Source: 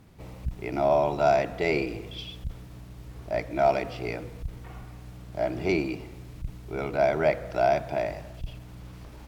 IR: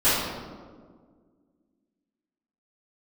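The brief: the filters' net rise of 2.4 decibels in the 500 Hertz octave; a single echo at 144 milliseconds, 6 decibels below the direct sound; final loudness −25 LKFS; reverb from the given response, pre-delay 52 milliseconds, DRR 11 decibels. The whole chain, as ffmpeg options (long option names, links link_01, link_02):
-filter_complex "[0:a]equalizer=frequency=500:width_type=o:gain=3.5,aecho=1:1:144:0.501,asplit=2[link_01][link_02];[1:a]atrim=start_sample=2205,adelay=52[link_03];[link_02][link_03]afir=irnorm=-1:irlink=0,volume=-29dB[link_04];[link_01][link_04]amix=inputs=2:normalize=0,volume=-1dB"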